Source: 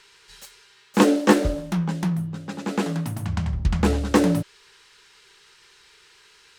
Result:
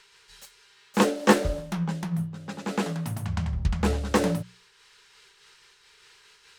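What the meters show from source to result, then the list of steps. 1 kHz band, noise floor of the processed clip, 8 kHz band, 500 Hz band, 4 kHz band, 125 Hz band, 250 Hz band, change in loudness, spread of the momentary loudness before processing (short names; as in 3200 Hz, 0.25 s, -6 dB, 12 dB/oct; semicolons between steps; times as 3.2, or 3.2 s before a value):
-2.0 dB, -59 dBFS, -2.0 dB, -3.0 dB, -2.0 dB, -3.5 dB, -5.5 dB, -4.0 dB, 10 LU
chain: bell 300 Hz -9 dB 0.37 oct; notches 60/120/180 Hz; noise-modulated level, depth 55%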